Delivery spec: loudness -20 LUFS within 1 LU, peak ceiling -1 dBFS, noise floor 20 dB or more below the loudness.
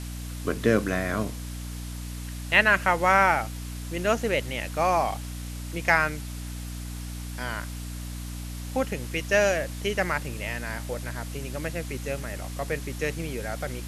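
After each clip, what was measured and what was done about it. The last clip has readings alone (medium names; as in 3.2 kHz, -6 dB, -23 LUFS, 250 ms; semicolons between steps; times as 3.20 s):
hum 60 Hz; highest harmonic 300 Hz; hum level -33 dBFS; noise floor -36 dBFS; noise floor target -48 dBFS; loudness -27.5 LUFS; peak level -5.0 dBFS; loudness target -20.0 LUFS
-> de-hum 60 Hz, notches 5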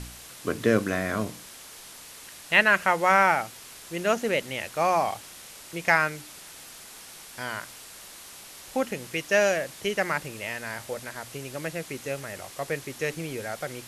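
hum not found; noise floor -46 dBFS; noise floor target -47 dBFS
-> noise print and reduce 6 dB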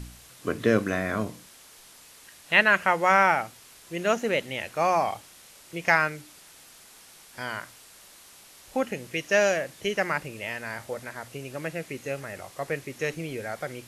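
noise floor -52 dBFS; loudness -26.5 LUFS; peak level -5.0 dBFS; loudness target -20.0 LUFS
-> trim +6.5 dB; peak limiter -1 dBFS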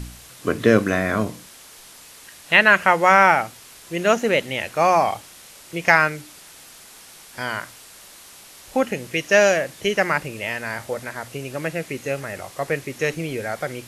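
loudness -20.5 LUFS; peak level -1.0 dBFS; noise floor -45 dBFS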